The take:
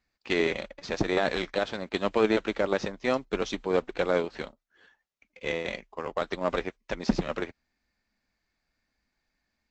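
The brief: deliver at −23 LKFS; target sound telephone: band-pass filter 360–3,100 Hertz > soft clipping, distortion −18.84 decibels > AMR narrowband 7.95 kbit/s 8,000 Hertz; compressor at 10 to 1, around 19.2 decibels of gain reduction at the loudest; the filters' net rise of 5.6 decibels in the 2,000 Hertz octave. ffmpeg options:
ffmpeg -i in.wav -af "equalizer=frequency=2000:width_type=o:gain=7.5,acompressor=threshold=-38dB:ratio=10,highpass=360,lowpass=3100,asoftclip=threshold=-30.5dB,volume=24.5dB" -ar 8000 -c:a libopencore_amrnb -b:a 7950 out.amr

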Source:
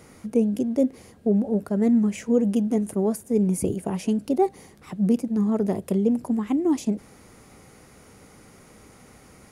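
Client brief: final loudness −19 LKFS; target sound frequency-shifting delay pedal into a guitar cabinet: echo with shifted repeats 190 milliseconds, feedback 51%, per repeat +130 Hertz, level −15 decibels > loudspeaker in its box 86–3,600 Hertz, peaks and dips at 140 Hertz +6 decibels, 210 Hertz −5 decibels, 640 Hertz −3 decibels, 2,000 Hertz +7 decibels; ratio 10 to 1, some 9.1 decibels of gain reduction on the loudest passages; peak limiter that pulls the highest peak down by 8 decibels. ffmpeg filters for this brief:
ffmpeg -i in.wav -filter_complex "[0:a]acompressor=threshold=-25dB:ratio=10,alimiter=limit=-23.5dB:level=0:latency=1,asplit=6[link_01][link_02][link_03][link_04][link_05][link_06];[link_02]adelay=190,afreqshift=130,volume=-15dB[link_07];[link_03]adelay=380,afreqshift=260,volume=-20.8dB[link_08];[link_04]adelay=570,afreqshift=390,volume=-26.7dB[link_09];[link_05]adelay=760,afreqshift=520,volume=-32.5dB[link_10];[link_06]adelay=950,afreqshift=650,volume=-38.4dB[link_11];[link_01][link_07][link_08][link_09][link_10][link_11]amix=inputs=6:normalize=0,highpass=86,equalizer=frequency=140:width_type=q:width=4:gain=6,equalizer=frequency=210:width_type=q:width=4:gain=-5,equalizer=frequency=640:width_type=q:width=4:gain=-3,equalizer=frequency=2000:width_type=q:width=4:gain=7,lowpass=frequency=3600:width=0.5412,lowpass=frequency=3600:width=1.3066,volume=15.5dB" out.wav

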